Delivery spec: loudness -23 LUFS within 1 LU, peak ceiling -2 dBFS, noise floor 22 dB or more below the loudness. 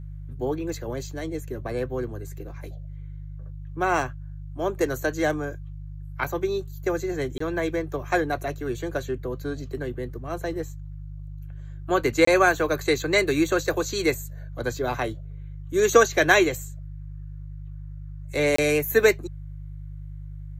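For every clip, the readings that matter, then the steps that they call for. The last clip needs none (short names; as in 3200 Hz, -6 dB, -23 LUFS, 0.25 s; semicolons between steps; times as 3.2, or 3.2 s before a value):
dropouts 3; longest dropout 24 ms; hum 50 Hz; harmonics up to 150 Hz; hum level -35 dBFS; loudness -25.0 LUFS; peak -3.5 dBFS; loudness target -23.0 LUFS
-> interpolate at 7.38/12.25/18.56, 24 ms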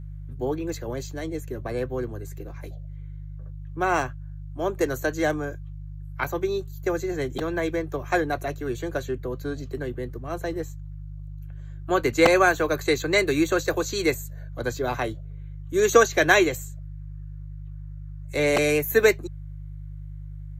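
dropouts 0; hum 50 Hz; harmonics up to 150 Hz; hum level -35 dBFS
-> de-hum 50 Hz, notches 3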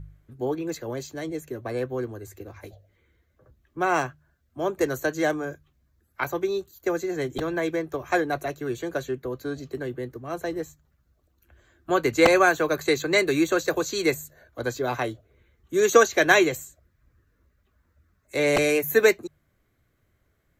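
hum none; loudness -25.0 LUFS; peak -3.0 dBFS; loudness target -23.0 LUFS
-> gain +2 dB; limiter -2 dBFS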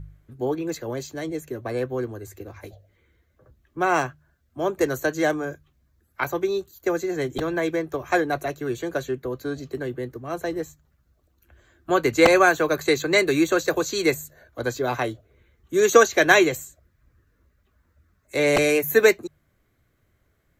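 loudness -23.0 LUFS; peak -2.0 dBFS; noise floor -68 dBFS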